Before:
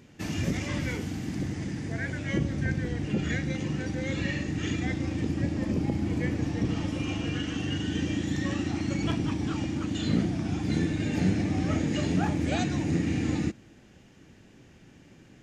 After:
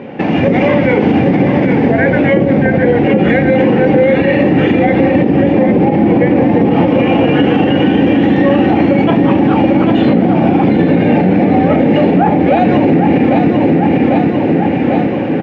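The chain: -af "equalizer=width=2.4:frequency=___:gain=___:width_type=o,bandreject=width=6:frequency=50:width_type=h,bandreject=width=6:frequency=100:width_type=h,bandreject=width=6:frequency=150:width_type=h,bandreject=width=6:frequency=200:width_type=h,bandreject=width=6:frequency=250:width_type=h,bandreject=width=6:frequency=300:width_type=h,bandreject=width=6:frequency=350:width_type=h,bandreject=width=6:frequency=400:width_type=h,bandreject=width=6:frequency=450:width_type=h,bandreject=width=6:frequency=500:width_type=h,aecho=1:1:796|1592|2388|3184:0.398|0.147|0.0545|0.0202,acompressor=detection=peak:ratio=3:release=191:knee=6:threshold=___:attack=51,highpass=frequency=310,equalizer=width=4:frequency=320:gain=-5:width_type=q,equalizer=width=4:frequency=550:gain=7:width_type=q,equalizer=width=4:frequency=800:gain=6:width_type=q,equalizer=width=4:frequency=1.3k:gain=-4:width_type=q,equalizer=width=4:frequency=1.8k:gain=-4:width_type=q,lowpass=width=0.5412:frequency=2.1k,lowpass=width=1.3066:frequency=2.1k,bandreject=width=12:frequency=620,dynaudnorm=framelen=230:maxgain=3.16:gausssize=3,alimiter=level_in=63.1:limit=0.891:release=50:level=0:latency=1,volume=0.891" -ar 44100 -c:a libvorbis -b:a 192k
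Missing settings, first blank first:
1.3k, -9.5, 0.00355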